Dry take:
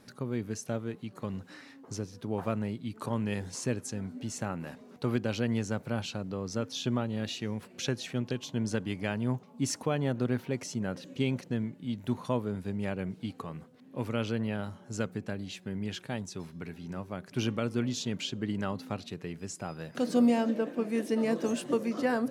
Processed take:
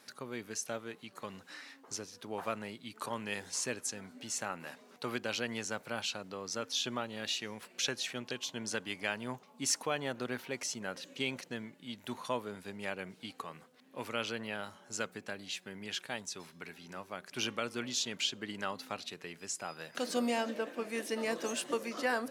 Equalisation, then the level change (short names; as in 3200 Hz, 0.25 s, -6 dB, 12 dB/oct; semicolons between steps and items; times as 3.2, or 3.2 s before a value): HPF 1300 Hz 6 dB/oct; +4.0 dB